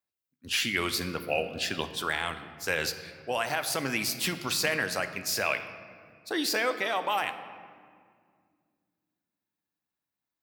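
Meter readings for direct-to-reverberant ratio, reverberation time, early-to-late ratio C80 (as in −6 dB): 9.0 dB, 2.1 s, 12.0 dB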